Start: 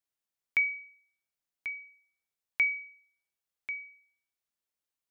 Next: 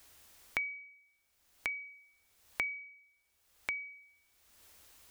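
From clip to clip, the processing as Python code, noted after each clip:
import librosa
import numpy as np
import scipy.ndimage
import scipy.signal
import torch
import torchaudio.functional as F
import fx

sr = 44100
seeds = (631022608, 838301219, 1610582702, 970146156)

y = fx.low_shelf_res(x, sr, hz=100.0, db=6.0, q=3.0)
y = fx.band_squash(y, sr, depth_pct=100)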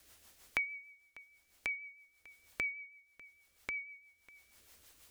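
y = fx.rotary(x, sr, hz=6.3)
y = y + 10.0 ** (-21.0 / 20.0) * np.pad(y, (int(597 * sr / 1000.0), 0))[:len(y)]
y = y * 10.0 ** (1.5 / 20.0)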